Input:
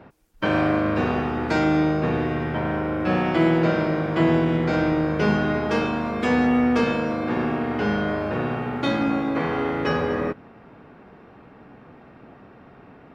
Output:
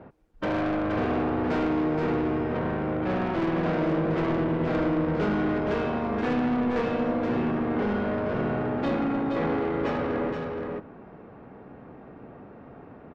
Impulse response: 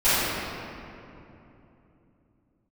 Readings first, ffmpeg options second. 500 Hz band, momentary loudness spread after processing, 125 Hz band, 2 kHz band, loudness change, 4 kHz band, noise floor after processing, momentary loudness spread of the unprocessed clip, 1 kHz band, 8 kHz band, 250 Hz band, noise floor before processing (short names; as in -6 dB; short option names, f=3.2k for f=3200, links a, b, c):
-3.0 dB, 21 LU, -5.0 dB, -7.0 dB, -4.0 dB, -8.5 dB, -48 dBFS, 6 LU, -4.0 dB, n/a, -4.0 dB, -49 dBFS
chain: -filter_complex "[0:a]lowpass=f=1.2k:p=1,equalizer=f=500:w=1.5:g=2.5,asoftclip=type=tanh:threshold=-23.5dB,asplit=2[a][b];[b]aecho=0:1:473:0.562[c];[a][c]amix=inputs=2:normalize=0"